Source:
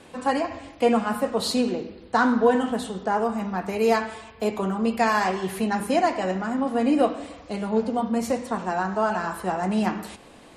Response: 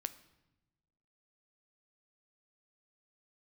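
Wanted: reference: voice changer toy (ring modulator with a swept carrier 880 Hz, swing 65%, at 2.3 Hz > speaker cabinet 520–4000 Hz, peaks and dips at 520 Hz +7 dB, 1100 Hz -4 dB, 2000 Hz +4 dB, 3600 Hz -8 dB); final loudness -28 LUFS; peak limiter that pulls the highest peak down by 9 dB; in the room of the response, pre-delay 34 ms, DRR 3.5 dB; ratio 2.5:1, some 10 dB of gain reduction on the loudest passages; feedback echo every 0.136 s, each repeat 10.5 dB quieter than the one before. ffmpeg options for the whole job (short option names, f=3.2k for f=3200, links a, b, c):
-filter_complex "[0:a]acompressor=threshold=-30dB:ratio=2.5,alimiter=level_in=0.5dB:limit=-24dB:level=0:latency=1,volume=-0.5dB,aecho=1:1:136|272|408:0.299|0.0896|0.0269,asplit=2[a][b];[1:a]atrim=start_sample=2205,adelay=34[c];[b][c]afir=irnorm=-1:irlink=0,volume=-2dB[d];[a][d]amix=inputs=2:normalize=0,aeval=exprs='val(0)*sin(2*PI*880*n/s+880*0.65/2.3*sin(2*PI*2.3*n/s))':c=same,highpass=520,equalizer=f=520:t=q:w=4:g=7,equalizer=f=1.1k:t=q:w=4:g=-4,equalizer=f=2k:t=q:w=4:g=4,equalizer=f=3.6k:t=q:w=4:g=-8,lowpass=f=4k:w=0.5412,lowpass=f=4k:w=1.3066,volume=7dB"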